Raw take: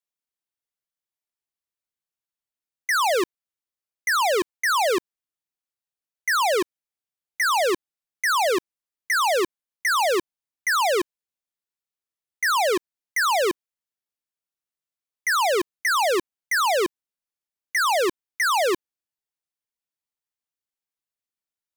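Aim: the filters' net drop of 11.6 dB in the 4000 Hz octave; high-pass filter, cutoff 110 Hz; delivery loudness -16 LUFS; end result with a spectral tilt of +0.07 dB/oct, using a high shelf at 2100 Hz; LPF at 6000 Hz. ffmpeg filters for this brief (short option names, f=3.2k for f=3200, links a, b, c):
-af "highpass=110,lowpass=6k,highshelf=f=2.1k:g=-6,equalizer=f=4k:t=o:g=-8.5,volume=9.5dB"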